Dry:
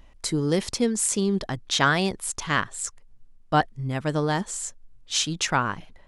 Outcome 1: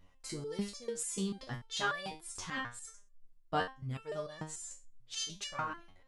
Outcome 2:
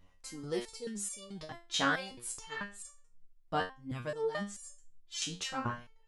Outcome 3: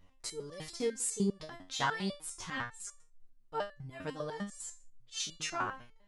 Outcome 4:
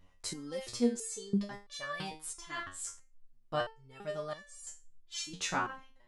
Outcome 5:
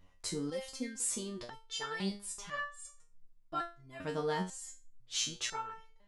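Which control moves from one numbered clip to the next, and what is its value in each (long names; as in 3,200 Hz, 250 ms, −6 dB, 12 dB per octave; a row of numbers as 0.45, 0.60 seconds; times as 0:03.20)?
step-sequenced resonator, speed: 6.8, 4.6, 10, 3, 2 Hertz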